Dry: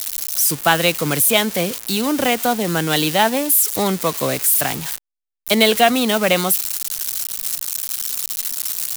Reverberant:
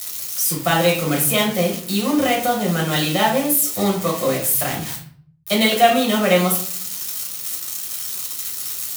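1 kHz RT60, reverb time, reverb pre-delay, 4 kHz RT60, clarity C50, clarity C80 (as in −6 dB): 0.50 s, 0.55 s, 5 ms, 0.35 s, 7.0 dB, 11.0 dB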